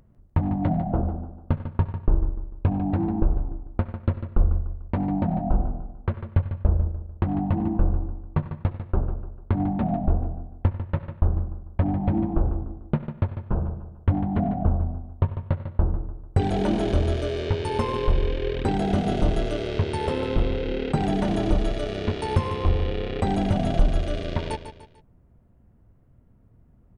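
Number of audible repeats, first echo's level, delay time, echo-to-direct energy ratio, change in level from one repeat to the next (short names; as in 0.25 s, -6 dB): 3, -10.5 dB, 0.148 s, -10.0 dB, -8.0 dB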